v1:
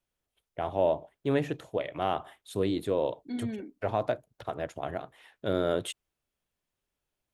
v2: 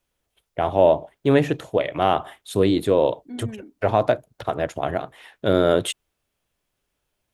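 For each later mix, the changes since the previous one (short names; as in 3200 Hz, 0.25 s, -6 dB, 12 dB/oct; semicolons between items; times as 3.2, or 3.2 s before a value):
first voice +10.0 dB; second voice: add LPF 1800 Hz 12 dB/oct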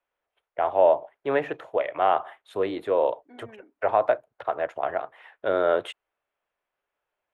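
master: add three-band isolator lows -21 dB, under 460 Hz, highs -22 dB, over 2400 Hz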